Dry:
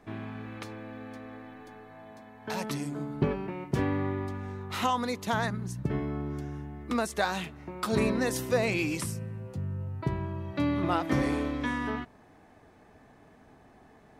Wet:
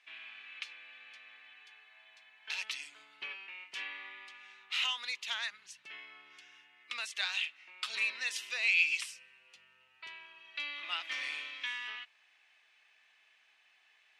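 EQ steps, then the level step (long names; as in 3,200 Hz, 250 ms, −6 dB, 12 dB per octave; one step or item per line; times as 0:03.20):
high-pass with resonance 2,700 Hz, resonance Q 3.1
high-frequency loss of the air 72 metres
0.0 dB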